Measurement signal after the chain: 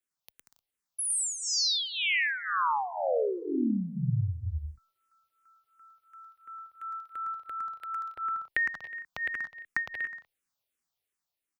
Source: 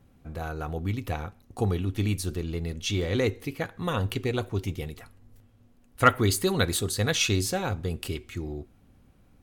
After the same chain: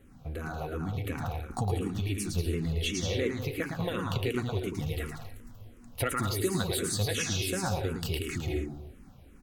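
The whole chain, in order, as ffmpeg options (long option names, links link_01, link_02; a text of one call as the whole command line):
ffmpeg -i in.wav -filter_complex "[0:a]acompressor=threshold=-37dB:ratio=6,aecho=1:1:110|187|240.9|278.6|305:0.631|0.398|0.251|0.158|0.1,dynaudnorm=framelen=200:gausssize=11:maxgain=4dB,asplit=2[link_01][link_02];[link_02]afreqshift=-2.8[link_03];[link_01][link_03]amix=inputs=2:normalize=1,volume=6dB" out.wav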